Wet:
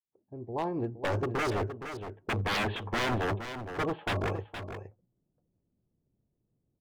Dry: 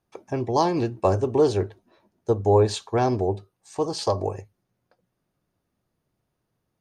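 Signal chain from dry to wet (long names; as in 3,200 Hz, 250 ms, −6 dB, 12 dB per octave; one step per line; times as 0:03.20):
fade in at the beginning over 2.06 s
0:01.50–0:04.21: Butterworth low-pass 3,300 Hz 72 dB per octave
low-pass that shuts in the quiet parts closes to 370 Hz, open at −18 dBFS
wave folding −24.5 dBFS
single-tap delay 467 ms −9.5 dB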